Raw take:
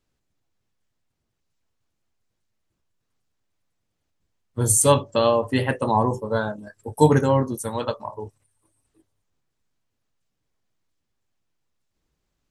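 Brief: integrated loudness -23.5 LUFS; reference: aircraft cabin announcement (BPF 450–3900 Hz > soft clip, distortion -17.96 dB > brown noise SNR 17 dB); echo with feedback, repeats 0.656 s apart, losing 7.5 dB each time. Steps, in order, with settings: BPF 450–3900 Hz; feedback echo 0.656 s, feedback 42%, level -7.5 dB; soft clip -11.5 dBFS; brown noise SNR 17 dB; gain +2.5 dB

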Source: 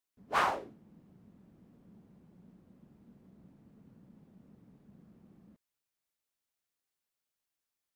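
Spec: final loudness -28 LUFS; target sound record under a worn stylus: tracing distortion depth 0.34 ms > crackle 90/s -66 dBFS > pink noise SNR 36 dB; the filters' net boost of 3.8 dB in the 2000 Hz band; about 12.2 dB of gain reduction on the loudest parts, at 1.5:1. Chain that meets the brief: bell 2000 Hz +5 dB; compressor 1.5:1, threshold -57 dBFS; tracing distortion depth 0.34 ms; crackle 90/s -66 dBFS; pink noise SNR 36 dB; gain +23 dB

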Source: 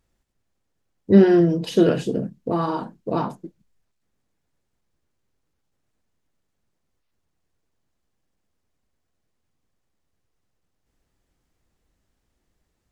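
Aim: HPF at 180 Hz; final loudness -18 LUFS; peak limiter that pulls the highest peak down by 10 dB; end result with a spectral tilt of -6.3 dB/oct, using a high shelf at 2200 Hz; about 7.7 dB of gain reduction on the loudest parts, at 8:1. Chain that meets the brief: HPF 180 Hz; high shelf 2200 Hz -5 dB; compressor 8:1, threshold -16 dBFS; gain +11.5 dB; limiter -8 dBFS

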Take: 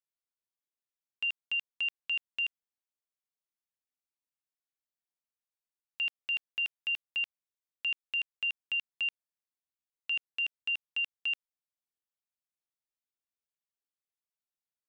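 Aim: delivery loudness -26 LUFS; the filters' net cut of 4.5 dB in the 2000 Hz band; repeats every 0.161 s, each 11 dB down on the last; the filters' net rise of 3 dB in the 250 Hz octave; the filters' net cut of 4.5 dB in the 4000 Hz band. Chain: bell 250 Hz +4 dB; bell 2000 Hz -4.5 dB; bell 4000 Hz -4.5 dB; feedback echo 0.161 s, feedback 28%, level -11 dB; gain +10.5 dB

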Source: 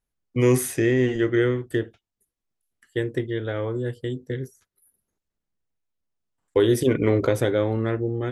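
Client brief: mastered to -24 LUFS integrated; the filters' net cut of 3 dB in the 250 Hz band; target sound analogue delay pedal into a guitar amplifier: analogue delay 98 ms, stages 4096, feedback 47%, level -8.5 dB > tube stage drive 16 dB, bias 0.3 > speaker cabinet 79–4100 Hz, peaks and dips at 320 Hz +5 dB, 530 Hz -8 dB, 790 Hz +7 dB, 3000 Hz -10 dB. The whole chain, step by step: bell 250 Hz -8.5 dB; analogue delay 98 ms, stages 4096, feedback 47%, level -8.5 dB; tube stage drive 16 dB, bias 0.3; speaker cabinet 79–4100 Hz, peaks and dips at 320 Hz +5 dB, 530 Hz -8 dB, 790 Hz +7 dB, 3000 Hz -10 dB; gain +4 dB

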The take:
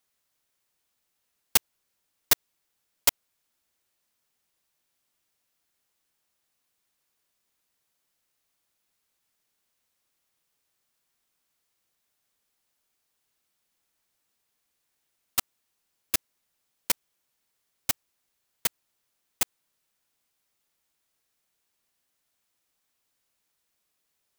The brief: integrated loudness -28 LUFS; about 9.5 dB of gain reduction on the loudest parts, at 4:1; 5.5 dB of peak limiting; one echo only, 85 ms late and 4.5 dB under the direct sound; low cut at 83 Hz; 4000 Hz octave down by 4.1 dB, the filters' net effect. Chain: HPF 83 Hz; bell 4000 Hz -5.5 dB; compressor 4:1, threshold -28 dBFS; limiter -16 dBFS; echo 85 ms -4.5 dB; gain +9 dB

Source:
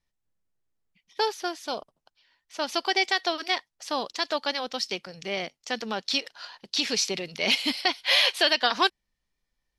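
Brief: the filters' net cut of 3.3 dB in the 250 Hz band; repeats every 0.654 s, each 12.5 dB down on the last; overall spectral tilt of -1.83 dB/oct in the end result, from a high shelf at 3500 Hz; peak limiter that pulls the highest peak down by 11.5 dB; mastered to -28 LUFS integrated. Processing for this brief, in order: bell 250 Hz -4.5 dB; high shelf 3500 Hz -8 dB; limiter -21.5 dBFS; feedback echo 0.654 s, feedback 24%, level -12.5 dB; gain +6 dB

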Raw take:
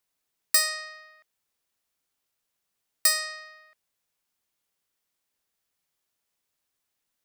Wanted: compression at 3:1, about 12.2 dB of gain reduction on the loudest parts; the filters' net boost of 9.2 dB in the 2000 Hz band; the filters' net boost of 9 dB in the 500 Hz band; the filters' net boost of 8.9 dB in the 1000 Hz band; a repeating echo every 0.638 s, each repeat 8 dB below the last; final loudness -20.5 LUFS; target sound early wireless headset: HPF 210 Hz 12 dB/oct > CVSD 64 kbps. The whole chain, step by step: bell 500 Hz +8.5 dB; bell 1000 Hz +7.5 dB; bell 2000 Hz +7.5 dB; compressor 3:1, threshold -31 dBFS; HPF 210 Hz 12 dB/oct; feedback echo 0.638 s, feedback 40%, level -8 dB; CVSD 64 kbps; gain +16 dB

